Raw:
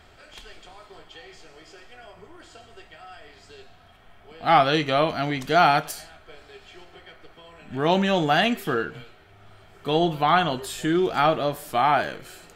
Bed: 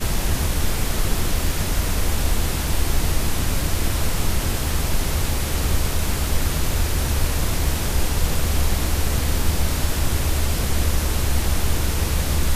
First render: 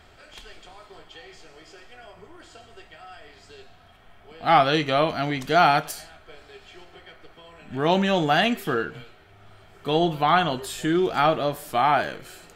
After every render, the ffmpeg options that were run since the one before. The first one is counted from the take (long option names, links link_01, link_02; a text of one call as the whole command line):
ffmpeg -i in.wav -af anull out.wav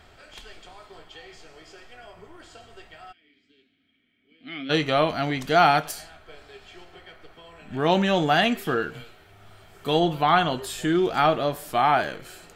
ffmpeg -i in.wav -filter_complex "[0:a]asplit=3[link_01][link_02][link_03];[link_01]afade=type=out:start_time=3.11:duration=0.02[link_04];[link_02]asplit=3[link_05][link_06][link_07];[link_05]bandpass=frequency=270:width_type=q:width=8,volume=0dB[link_08];[link_06]bandpass=frequency=2290:width_type=q:width=8,volume=-6dB[link_09];[link_07]bandpass=frequency=3010:width_type=q:width=8,volume=-9dB[link_10];[link_08][link_09][link_10]amix=inputs=3:normalize=0,afade=type=in:start_time=3.11:duration=0.02,afade=type=out:start_time=4.69:duration=0.02[link_11];[link_03]afade=type=in:start_time=4.69:duration=0.02[link_12];[link_04][link_11][link_12]amix=inputs=3:normalize=0,asettb=1/sr,asplit=3[link_13][link_14][link_15];[link_13]atrim=end=8.824[link_16];[link_14]atrim=start=8.82:end=10,asetpts=PTS-STARTPTS,afade=type=in:duration=0.004:curve=qsin,afade=type=out:start_time=1.176:duration=0.004:curve=qsin,highshelf=frequency=6200:gain=9[link_17];[link_15]atrim=start=9.996[link_18];[link_16][link_17]acrossfade=duration=0.004:curve1=hsin:curve2=qsin[link_19];[link_19][link_18]acrossfade=duration=0.004:curve1=qsin:curve2=hsin" out.wav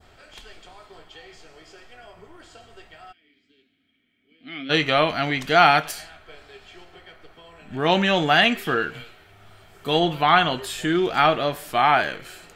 ffmpeg -i in.wav -af "adynamicequalizer=threshold=0.0158:dfrequency=2300:dqfactor=0.76:tfrequency=2300:tqfactor=0.76:attack=5:release=100:ratio=0.375:range=3.5:mode=boostabove:tftype=bell" out.wav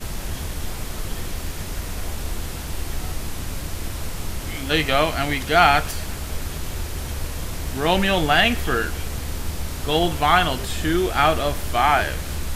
ffmpeg -i in.wav -i bed.wav -filter_complex "[1:a]volume=-7.5dB[link_01];[0:a][link_01]amix=inputs=2:normalize=0" out.wav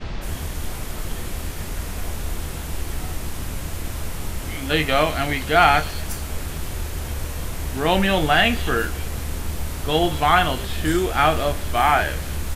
ffmpeg -i in.wav -filter_complex "[0:a]asplit=2[link_01][link_02];[link_02]adelay=26,volume=-11.5dB[link_03];[link_01][link_03]amix=inputs=2:normalize=0,acrossover=split=4800[link_04][link_05];[link_05]adelay=210[link_06];[link_04][link_06]amix=inputs=2:normalize=0" out.wav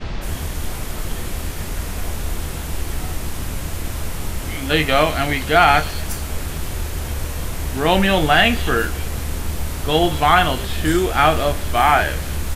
ffmpeg -i in.wav -af "volume=3dB,alimiter=limit=-1dB:level=0:latency=1" out.wav